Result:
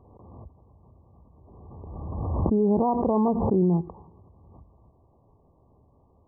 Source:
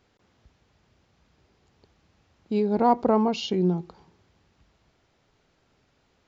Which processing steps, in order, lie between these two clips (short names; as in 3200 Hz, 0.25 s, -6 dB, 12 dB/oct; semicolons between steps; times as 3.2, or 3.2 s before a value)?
bell 79 Hz +8.5 dB 1.1 oct; limiter -19.5 dBFS, peak gain reduction 10.5 dB; brick-wall FIR low-pass 1200 Hz; backwards sustainer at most 29 dB/s; gain +4.5 dB